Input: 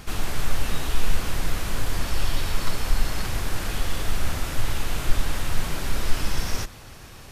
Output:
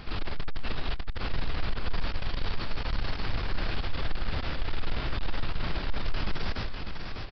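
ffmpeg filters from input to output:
-af "aresample=11025,asoftclip=type=tanh:threshold=0.0841,aresample=44100,aecho=1:1:598:0.531,volume=0.891"

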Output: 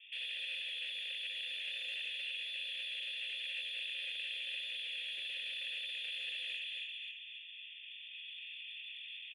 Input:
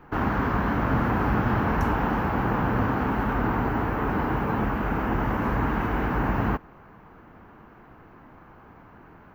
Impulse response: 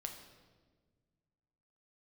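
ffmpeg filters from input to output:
-filter_complex "[0:a]lowpass=f=3100:t=q:w=0.5098,lowpass=f=3100:t=q:w=0.6013,lowpass=f=3100:t=q:w=0.9,lowpass=f=3100:t=q:w=2.563,afreqshift=-3600,asettb=1/sr,asplit=3[s0][s1][s2];[s0]atrim=end=1.344[s3];[s1]atrim=start=1.34:end=2.01,asetpts=PTS-STARTPTS,afade=t=in:d=0.004:c=qsin,afade=t=out:st=0.666:d=0.004:c=qsin,aecho=1:1:6.2:0.71,atrim=end_sample=29547[s4];[s2]atrim=start=2.006[s5];[s3][s4]acrossfade=d=0.004:c1=hsin:c2=qsin[s6];[s6][s5]acrossfade=d=0.004:c1=qsin:c2=hsin,aecho=1:1:275|550|825|1100|1375:0.531|0.234|0.103|0.0452|0.0199,aexciter=amount=5.9:drive=9:freq=2400,asettb=1/sr,asplit=3[s7][s8][s9];[s7]atrim=end=4.974[s10];[s8]atrim=start=4.97:end=5.57,asetpts=PTS-STARTPTS,afade=t=in:d=0.004:c=qsin,afade=t=out:st=0.596:d=0.004:c=qsin,aeval=exprs='0.75*(abs(mod(val(0)/0.75+3,4)-2)-1)':c=same[s11];[s9]atrim=start=5.566[s12];[s10][s11]acrossfade=d=0.004:c1=hsin:c2=qsin[s13];[s13][s12]acrossfade=d=0.004:c1=qsin:c2=hsin[s14];[1:a]atrim=start_sample=2205,asetrate=52920,aresample=44100[s15];[s14][s15]afir=irnorm=-1:irlink=0,dynaudnorm=f=560:g=3:m=2.37,asoftclip=type=tanh:threshold=0.119,asplit=3[s16][s17][s18];[s16]bandpass=f=530:t=q:w=8,volume=1[s19];[s17]bandpass=f=1840:t=q:w=8,volume=0.501[s20];[s18]bandpass=f=2480:t=q:w=8,volume=0.355[s21];[s19][s20][s21]amix=inputs=3:normalize=0,volume=0.531"

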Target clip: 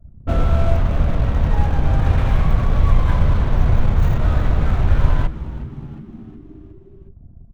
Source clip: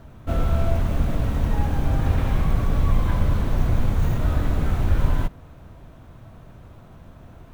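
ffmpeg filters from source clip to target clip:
-filter_complex "[0:a]anlmdn=1.58,adynamicequalizer=threshold=0.00708:dfrequency=270:dqfactor=1.4:tfrequency=270:tqfactor=1.4:attack=5:release=100:ratio=0.375:range=3:mode=cutabove:tftype=bell,asplit=6[s0][s1][s2][s3][s4][s5];[s1]adelay=363,afreqshift=-83,volume=0.168[s6];[s2]adelay=726,afreqshift=-166,volume=0.0923[s7];[s3]adelay=1089,afreqshift=-249,volume=0.0507[s8];[s4]adelay=1452,afreqshift=-332,volume=0.0279[s9];[s5]adelay=1815,afreqshift=-415,volume=0.0153[s10];[s0][s6][s7][s8][s9][s10]amix=inputs=6:normalize=0,volume=1.78"

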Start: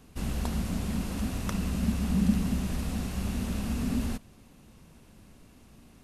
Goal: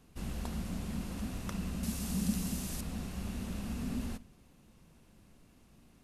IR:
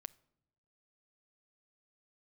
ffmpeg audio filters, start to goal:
-filter_complex "[0:a]asettb=1/sr,asplit=3[s0][s1][s2];[s0]atrim=end=1.834[s3];[s1]atrim=start=1.83:end=2.81,asetpts=PTS-STARTPTS,afade=t=in:d=0.004:c=qsin,afade=t=out:st=0.976:d=0.004:c=qsin,bass=f=250:g=-2,treble=f=4000:g=12[s4];[s2]atrim=start=2.806[s5];[s3][s4]acrossfade=d=0.004:c1=hsin:c2=qsin[s6];[s6][s5]acrossfade=d=0.004:c1=qsin:c2=hsin[s7];[1:a]atrim=start_sample=2205,asetrate=52920,aresample=44100[s8];[s7][s8]afir=irnorm=-1:irlink=0"

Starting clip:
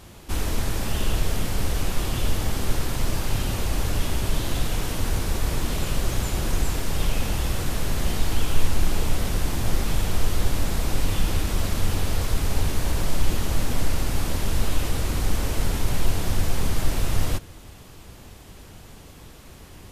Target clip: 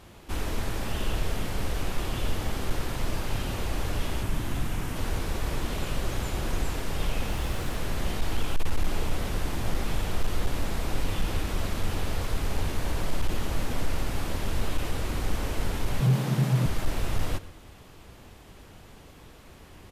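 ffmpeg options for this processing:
-filter_complex "[0:a]asettb=1/sr,asplit=3[s0][s1][s2];[s0]atrim=end=4.234[s3];[s1]atrim=start=4.23:end=4.96,asetpts=PTS-STARTPTS,afade=t=in:d=0.004:c=qsin,afade=t=out:st=0.726:d=0.004:c=qsin,equalizer=f=125:t=o:w=1:g=3,equalizer=f=250:t=o:w=1:g=3,equalizer=f=500:t=o:w=1:g=-6,equalizer=f=4000:t=o:w=1:g=-6[s4];[s2]atrim=start=4.956[s5];[s3][s4]acrossfade=d=0.004:c1=hsin:c2=qsin[s6];[s6][s5]acrossfade=d=0.004:c1=qsin:c2=hsin,asplit=2[s7][s8];[s8]adelay=116.6,volume=0.141,highshelf=f=4000:g=-2.62[s9];[s7][s9]amix=inputs=2:normalize=0,asettb=1/sr,asplit=3[s10][s11][s12];[s10]atrim=end=7.304[s13];[s11]atrim=start=7.3:end=7.76,asetpts=PTS-STARTPTS,afade=t=in:d=0.004:c=qsin,afade=t=out:st=0.456:d=0.004:c=qsin,acrusher=bits=6:mix=0:aa=0.5[s14];[s12]atrim=start=7.756[s15];[s13][s14]acrossfade=d=0.004:c1=hsin:c2=qsin[s16];[s16][s15]acrossfade=d=0.004:c1=qsin:c2=hsin,bass=f=250:g=-3,treble=f=4000:g=-6,asettb=1/sr,asplit=3[s17][s18][s19];[s17]atrim=end=16.004[s20];[s18]atrim=start=16:end=16.66,asetpts=PTS-STARTPTS,afade=t=in:d=0.004:c=qsin,afade=t=out:st=0.656:d=0.004:c=qsin,afreqshift=120[s21];[s19]atrim=start=16.656[s22];[s20][s21]acrossfade=d=0.004:c1=hsin:c2=qsin[s23];[s23][s22]acrossfade=d=0.004:c1=qsin:c2=hsin,volume=5.01,asoftclip=hard,volume=0.2,volume=0.75"

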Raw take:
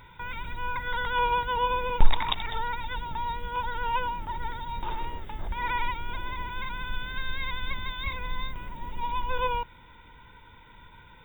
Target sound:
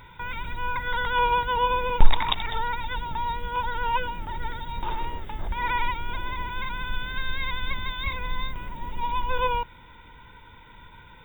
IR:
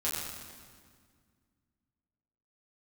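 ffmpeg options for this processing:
-filter_complex "[0:a]asettb=1/sr,asplit=3[s0][s1][s2];[s0]atrim=end=3.974[s3];[s1]atrim=start=3.97:end=4.78,asetpts=PTS-STARTPTS,afade=t=in:d=0.004:c=qsin,afade=t=out:st=0.806:d=0.004:c=qsin,bandreject=f=1000:w=6.3[s4];[s2]atrim=start=4.776[s5];[s3][s4]acrossfade=d=0.004:c1=hsin:c2=qsin[s6];[s6][s5]acrossfade=d=0.004:c1=qsin:c2=hsin,volume=1.41"

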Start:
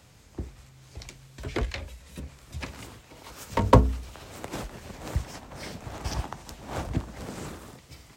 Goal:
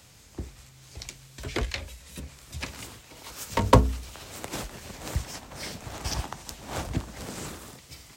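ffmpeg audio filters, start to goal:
-af "highshelf=f=2400:g=8,volume=0.891"

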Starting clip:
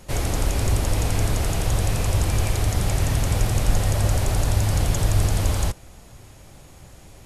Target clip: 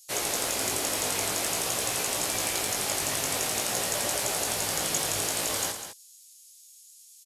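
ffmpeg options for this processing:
-filter_complex "[0:a]highpass=340,highshelf=f=3000:g=8,acrossover=split=4100[s0][s1];[s0]acrusher=bits=4:mix=0:aa=0.5[s2];[s2][s1]amix=inputs=2:normalize=0,flanger=delay=16.5:depth=2.9:speed=0.5,aecho=1:1:110.8|201.2:0.251|0.316"

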